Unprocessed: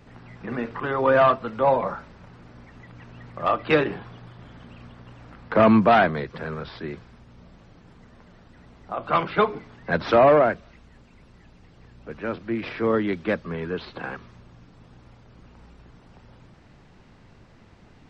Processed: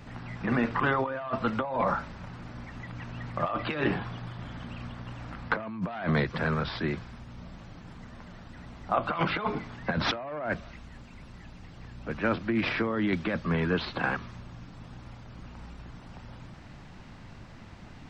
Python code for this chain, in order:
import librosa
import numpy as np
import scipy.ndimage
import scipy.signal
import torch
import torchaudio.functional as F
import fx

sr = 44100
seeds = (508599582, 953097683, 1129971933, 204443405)

y = fx.peak_eq(x, sr, hz=430.0, db=-6.5, octaves=0.65)
y = fx.over_compress(y, sr, threshold_db=-29.0, ratio=-1.0)